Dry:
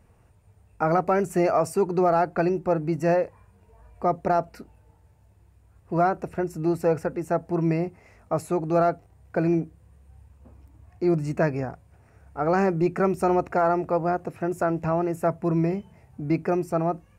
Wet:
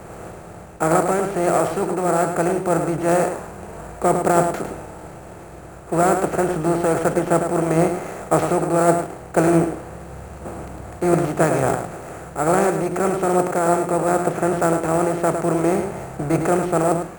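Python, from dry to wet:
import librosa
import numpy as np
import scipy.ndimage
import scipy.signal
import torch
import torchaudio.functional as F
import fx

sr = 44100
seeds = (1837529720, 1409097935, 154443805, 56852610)

p1 = fx.bin_compress(x, sr, power=0.4)
p2 = fx.sample_hold(p1, sr, seeds[0], rate_hz=8700.0, jitter_pct=0)
p3 = fx.rider(p2, sr, range_db=4, speed_s=0.5)
p4 = p3 + fx.echo_single(p3, sr, ms=106, db=-6.0, dry=0)
p5 = fx.band_widen(p4, sr, depth_pct=70)
y = F.gain(torch.from_numpy(p5), -1.0).numpy()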